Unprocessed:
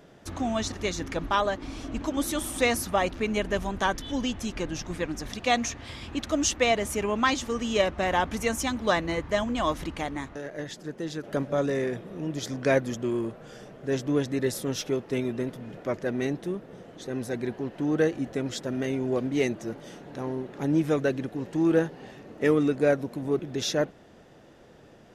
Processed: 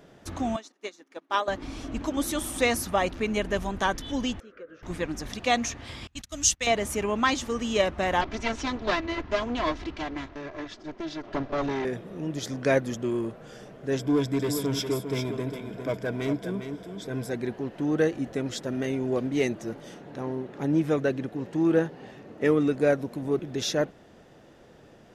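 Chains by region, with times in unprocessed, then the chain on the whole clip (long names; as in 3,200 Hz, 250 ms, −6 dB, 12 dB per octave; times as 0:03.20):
0:00.56–0:01.48: high-pass filter 270 Hz 24 dB per octave + expander for the loud parts 2.5 to 1, over −41 dBFS
0:04.40–0:04.83: pair of resonant band-passes 830 Hz, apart 1.5 octaves + high-frequency loss of the air 78 metres + downward compressor 3 to 1, threshold −39 dBFS
0:06.07–0:06.67: noise gate −34 dBFS, range −25 dB + drawn EQ curve 140 Hz 0 dB, 210 Hz −8 dB, 340 Hz −15 dB, 1,000 Hz −11 dB, 7,000 Hz +6 dB
0:08.21–0:11.85: lower of the sound and its delayed copy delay 3 ms + low-pass filter 5,600 Hz 24 dB per octave
0:13.99–0:17.30: hard clipping −23.5 dBFS + EQ curve with evenly spaced ripples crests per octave 1.7, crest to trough 10 dB + single-tap delay 403 ms −8 dB
0:19.94–0:22.68: high-pass filter 53 Hz + high-shelf EQ 4,600 Hz −5 dB
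whole clip: no processing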